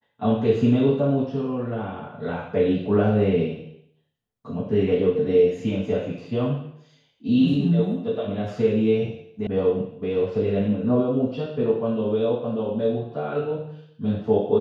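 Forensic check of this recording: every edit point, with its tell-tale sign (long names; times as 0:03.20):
0:09.47: cut off before it has died away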